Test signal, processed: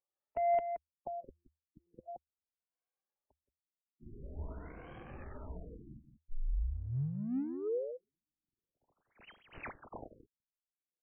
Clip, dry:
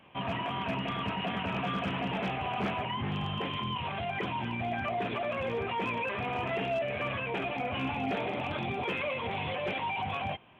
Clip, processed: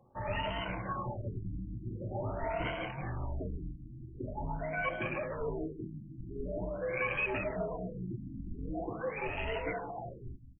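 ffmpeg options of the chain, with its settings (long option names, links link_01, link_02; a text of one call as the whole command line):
ffmpeg -i in.wav -filter_complex "[0:a]afftfilt=real='re*pow(10,16/40*sin(2*PI*(2*log(max(b,1)*sr/1024/100)/log(2)-(0.99)*(pts-256)/sr)))':imag='im*pow(10,16/40*sin(2*PI*(2*log(max(b,1)*sr/1024/100)/log(2)-(0.99)*(pts-256)/sr)))':win_size=1024:overlap=0.75,afreqshift=-80,equalizer=frequency=920:width_type=o:width=0.8:gain=-2.5,acrossover=split=570[link_01][link_02];[link_02]acompressor=mode=upward:threshold=-50dB:ratio=2.5[link_03];[link_01][link_03]amix=inputs=2:normalize=0,highshelf=frequency=2300:gain=7.5,adynamicsmooth=sensitivity=5:basefreq=510,aecho=1:1:173:0.335,afftfilt=real='re*lt(b*sr/1024,310*pow(3300/310,0.5+0.5*sin(2*PI*0.45*pts/sr)))':imag='im*lt(b*sr/1024,310*pow(3300/310,0.5+0.5*sin(2*PI*0.45*pts/sr)))':win_size=1024:overlap=0.75,volume=-5.5dB" out.wav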